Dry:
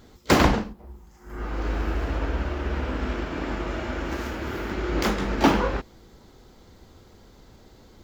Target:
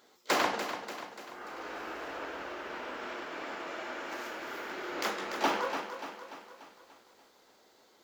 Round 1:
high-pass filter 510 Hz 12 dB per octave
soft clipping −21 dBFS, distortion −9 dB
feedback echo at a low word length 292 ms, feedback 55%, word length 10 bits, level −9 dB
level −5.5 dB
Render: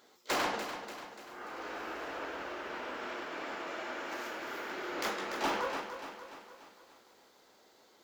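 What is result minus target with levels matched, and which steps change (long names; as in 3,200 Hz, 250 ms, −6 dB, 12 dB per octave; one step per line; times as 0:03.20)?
soft clipping: distortion +12 dB
change: soft clipping −10.5 dBFS, distortion −21 dB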